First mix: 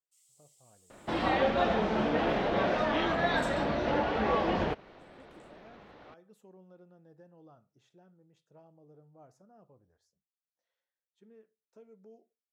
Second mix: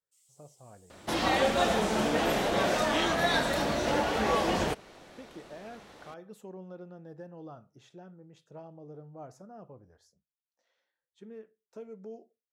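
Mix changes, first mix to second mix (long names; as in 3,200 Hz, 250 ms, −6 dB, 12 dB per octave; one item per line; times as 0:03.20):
speech +11.0 dB
second sound: remove high-frequency loss of the air 270 metres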